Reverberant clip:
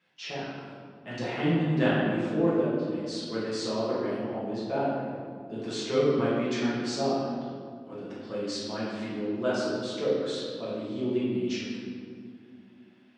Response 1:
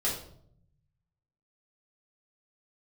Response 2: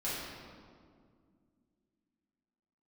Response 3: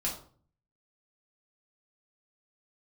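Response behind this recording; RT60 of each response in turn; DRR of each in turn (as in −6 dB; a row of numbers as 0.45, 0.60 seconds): 2; 0.65, 2.1, 0.45 seconds; −7.0, −10.0, −4.0 decibels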